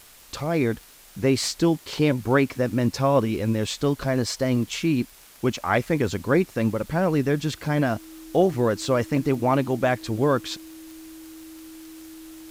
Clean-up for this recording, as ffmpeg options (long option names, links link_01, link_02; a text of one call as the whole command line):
ffmpeg -i in.wav -af "adeclick=threshold=4,bandreject=frequency=320:width=30,afftdn=noise_reduction=20:noise_floor=-49" out.wav